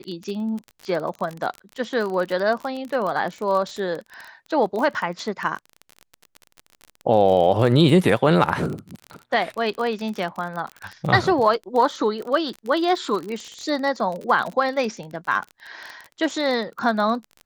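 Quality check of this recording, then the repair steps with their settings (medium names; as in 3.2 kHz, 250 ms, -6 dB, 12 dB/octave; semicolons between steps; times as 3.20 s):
crackle 32 per s -27 dBFS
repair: de-click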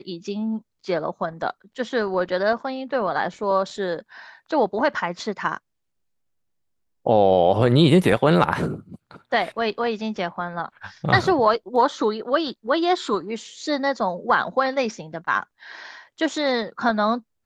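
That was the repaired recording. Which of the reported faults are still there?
nothing left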